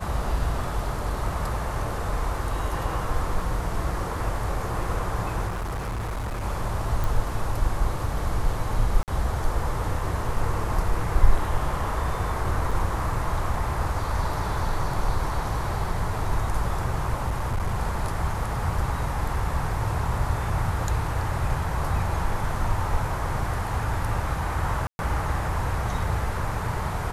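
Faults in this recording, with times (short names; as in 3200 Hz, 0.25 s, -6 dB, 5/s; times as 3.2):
5.47–6.44 clipped -26.5 dBFS
7.04 pop
9.03–9.08 gap 48 ms
12.71–12.72 gap 5.1 ms
17.28–17.8 clipped -21.5 dBFS
24.87–24.99 gap 0.121 s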